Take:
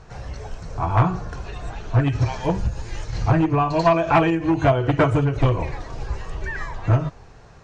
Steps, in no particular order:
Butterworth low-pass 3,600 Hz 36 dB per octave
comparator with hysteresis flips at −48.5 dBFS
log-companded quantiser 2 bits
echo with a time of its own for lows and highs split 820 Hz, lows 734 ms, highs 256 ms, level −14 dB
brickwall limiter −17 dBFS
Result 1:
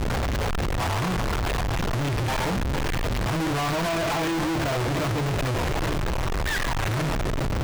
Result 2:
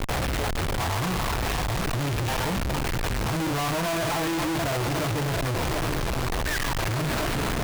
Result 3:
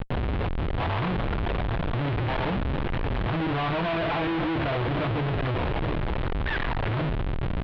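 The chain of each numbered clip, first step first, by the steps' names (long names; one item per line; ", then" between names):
brickwall limiter, then echo with a time of its own for lows and highs, then comparator with hysteresis, then Butterworth low-pass, then log-companded quantiser
echo with a time of its own for lows and highs, then brickwall limiter, then log-companded quantiser, then Butterworth low-pass, then comparator with hysteresis
brickwall limiter, then echo with a time of its own for lows and highs, then log-companded quantiser, then comparator with hysteresis, then Butterworth low-pass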